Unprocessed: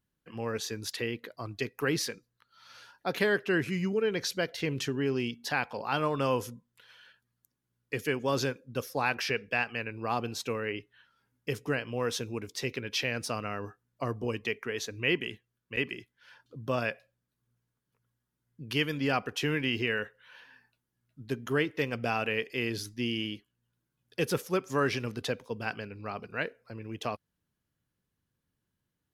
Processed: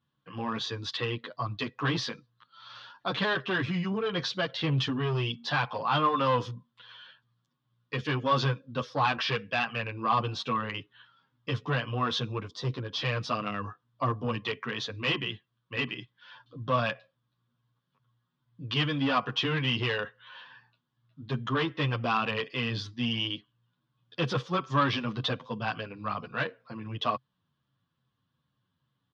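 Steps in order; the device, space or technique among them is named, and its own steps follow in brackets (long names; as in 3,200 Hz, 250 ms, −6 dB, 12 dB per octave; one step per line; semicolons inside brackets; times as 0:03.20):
barber-pole flanger into a guitar amplifier (barber-pole flanger 9.2 ms −2.4 Hz; soft clipping −28 dBFS, distortion −13 dB; loudspeaker in its box 100–4,600 Hz, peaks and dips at 130 Hz +8 dB, 400 Hz −7 dB, 1,100 Hz +10 dB, 2,200 Hz −5 dB, 3,400 Hz +8 dB)
0:12.49–0:13.02: parametric band 2,400 Hz −14 dB 0.98 octaves
level +6.5 dB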